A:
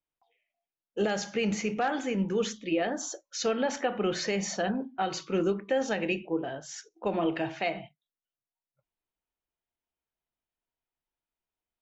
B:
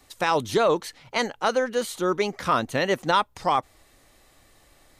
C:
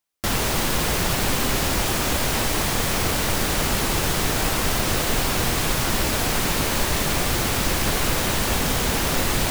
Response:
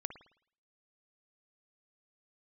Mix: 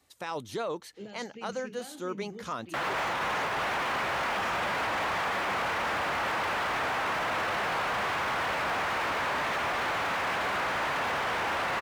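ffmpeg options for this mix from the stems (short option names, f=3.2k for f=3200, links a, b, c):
-filter_complex "[0:a]equalizer=f=1.1k:t=o:w=2.5:g=-13,volume=-11dB[a];[1:a]volume=-11dB[b];[2:a]acrossover=split=600 3100:gain=0.0891 1 0.112[c][d][e];[c][d][e]amix=inputs=3:normalize=0,asplit=2[f][g];[g]highpass=f=720:p=1,volume=30dB,asoftclip=type=tanh:threshold=-15.5dB[h];[f][h]amix=inputs=2:normalize=0,lowpass=f=1.1k:p=1,volume=-6dB,adelay=2500,volume=2.5dB[i];[a][b][i]amix=inputs=3:normalize=0,highpass=56,alimiter=level_in=0.5dB:limit=-24dB:level=0:latency=1:release=14,volume=-0.5dB"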